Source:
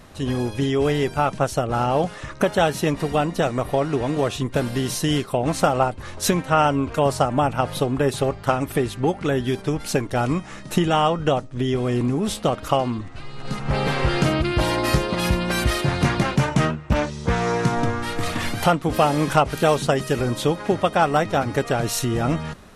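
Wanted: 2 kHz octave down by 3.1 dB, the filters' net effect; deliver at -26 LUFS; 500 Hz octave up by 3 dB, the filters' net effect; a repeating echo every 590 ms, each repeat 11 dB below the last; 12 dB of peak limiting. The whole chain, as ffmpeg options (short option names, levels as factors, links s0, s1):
-af "equalizer=f=500:t=o:g=4,equalizer=f=2000:t=o:g=-4.5,alimiter=limit=0.188:level=0:latency=1,aecho=1:1:590|1180|1770:0.282|0.0789|0.0221,volume=0.841"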